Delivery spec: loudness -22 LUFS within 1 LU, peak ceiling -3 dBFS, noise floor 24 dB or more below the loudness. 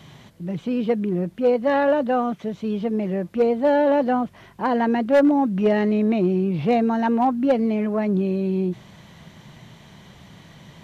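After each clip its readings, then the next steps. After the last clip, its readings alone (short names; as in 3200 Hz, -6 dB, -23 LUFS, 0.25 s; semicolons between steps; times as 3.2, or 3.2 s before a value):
clipped 0.3%; flat tops at -11.5 dBFS; loudness -21.5 LUFS; peak -11.5 dBFS; loudness target -22.0 LUFS
-> clip repair -11.5 dBFS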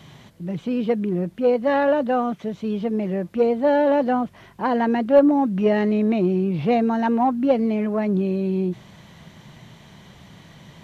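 clipped 0.0%; loudness -21.0 LUFS; peak -4.5 dBFS; loudness target -22.0 LUFS
-> gain -1 dB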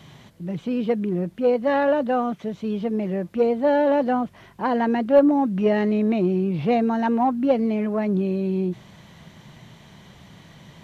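loudness -22.0 LUFS; peak -5.5 dBFS; noise floor -49 dBFS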